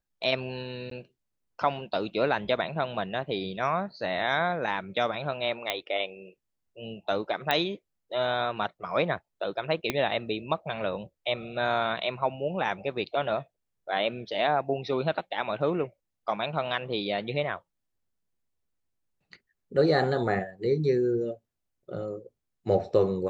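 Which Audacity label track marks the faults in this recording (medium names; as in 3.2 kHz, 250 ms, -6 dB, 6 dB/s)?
0.900000	0.910000	dropout 13 ms
5.700000	5.700000	pop -12 dBFS
7.510000	7.510000	pop -11 dBFS
9.900000	9.900000	pop -11 dBFS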